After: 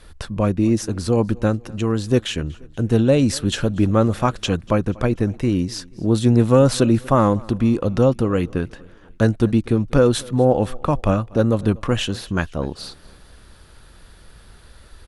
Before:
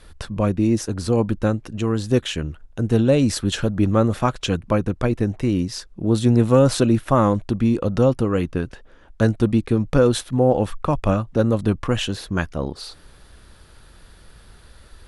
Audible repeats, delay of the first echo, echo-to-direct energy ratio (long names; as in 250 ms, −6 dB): 2, 241 ms, −23.0 dB